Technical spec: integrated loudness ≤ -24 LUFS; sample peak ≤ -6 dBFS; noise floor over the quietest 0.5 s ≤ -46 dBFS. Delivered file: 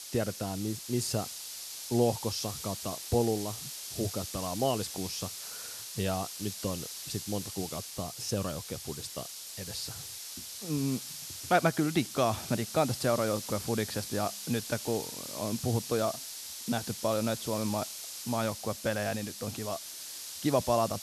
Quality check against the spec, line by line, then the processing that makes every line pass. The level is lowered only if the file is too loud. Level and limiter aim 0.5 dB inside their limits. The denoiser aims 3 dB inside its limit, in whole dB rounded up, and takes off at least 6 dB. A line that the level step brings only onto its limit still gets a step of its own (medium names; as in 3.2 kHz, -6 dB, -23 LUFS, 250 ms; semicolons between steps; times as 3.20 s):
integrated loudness -32.5 LUFS: pass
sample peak -10.5 dBFS: pass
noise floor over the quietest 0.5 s -43 dBFS: fail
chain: noise reduction 6 dB, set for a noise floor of -43 dBFS